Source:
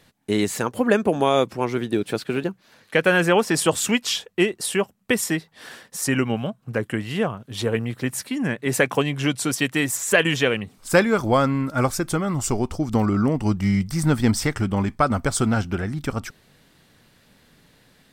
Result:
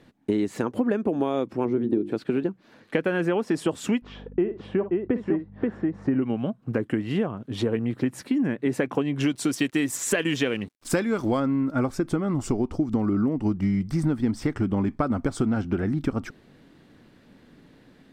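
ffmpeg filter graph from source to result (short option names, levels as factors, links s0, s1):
-filter_complex "[0:a]asettb=1/sr,asplit=3[s0][s1][s2];[s0]atrim=end=1.654[s3];[s1]atrim=start=1.65:end=2.12,asetpts=PTS-STARTPTS,afade=t=in:d=0.004:c=qsin,afade=t=out:st=0.466:d=0.004:c=qsin,highpass=f=180:p=1,tiltshelf=f=810:g=8.5,bandreject=f=50:t=h:w=6,bandreject=f=100:t=h:w=6,bandreject=f=150:t=h:w=6,bandreject=f=200:t=h:w=6,bandreject=f=250:t=h:w=6,bandreject=f=300:t=h:w=6,bandreject=f=350:t=h:w=6[s4];[s2]atrim=start=2.116[s5];[s3][s4]acrossfade=d=0.004:c1=hsin:c2=qsin[s6];[s6][s5]acrossfade=d=0.004:c1=qsin:c2=hsin,asettb=1/sr,asplit=3[s7][s8][s9];[s7]atrim=end=4.024[s10];[s8]atrim=start=4.02:end=6.22,asetpts=PTS-STARTPTS,afade=t=in:d=0.004:c=qsin,afade=t=out:st=2.196:d=0.004:c=qsin,lowpass=1300,aeval=exprs='val(0)+0.00708*(sin(2*PI*50*n/s)+sin(2*PI*2*50*n/s)/2+sin(2*PI*3*50*n/s)/3+sin(2*PI*4*50*n/s)/4+sin(2*PI*5*50*n/s)/5)':c=same,aecho=1:1:54|530:0.224|0.531,atrim=end_sample=97020[s11];[s9]atrim=start=6.216[s12];[s10][s11]acrossfade=d=0.004:c1=hsin:c2=qsin[s13];[s13][s12]acrossfade=d=0.004:c1=qsin:c2=hsin,asettb=1/sr,asplit=3[s14][s15][s16];[s14]atrim=end=9.204[s17];[s15]atrim=start=9.2:end=11.4,asetpts=PTS-STARTPTS,afade=t=in:d=0.004:c=qsin,afade=t=out:st=2.196:d=0.004:c=qsin,aeval=exprs='sgn(val(0))*max(abs(val(0))-0.00422,0)':c=same,highshelf=f=2600:g=11[s18];[s16]atrim=start=11.396[s19];[s17][s18]acrossfade=d=0.004:c1=hsin:c2=qsin[s20];[s20][s19]acrossfade=d=0.004:c1=qsin:c2=hsin,lowpass=f=2200:p=1,equalizer=f=290:w=1.3:g=9.5,acompressor=threshold=0.0891:ratio=6"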